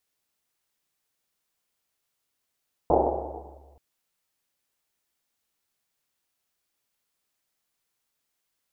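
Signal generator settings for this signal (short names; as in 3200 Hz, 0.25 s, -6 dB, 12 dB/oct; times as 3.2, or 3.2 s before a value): Risset drum length 0.88 s, pitch 70 Hz, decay 2.37 s, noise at 590 Hz, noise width 530 Hz, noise 80%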